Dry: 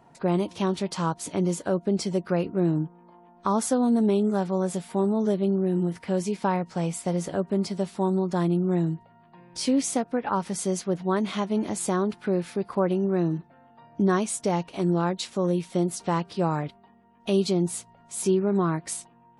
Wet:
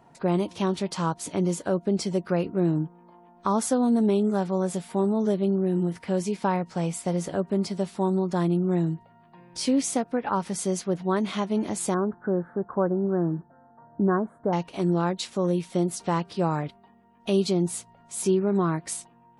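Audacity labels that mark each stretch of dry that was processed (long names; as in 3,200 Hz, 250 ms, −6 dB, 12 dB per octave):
11.940000	14.530000	elliptic low-pass filter 1,600 Hz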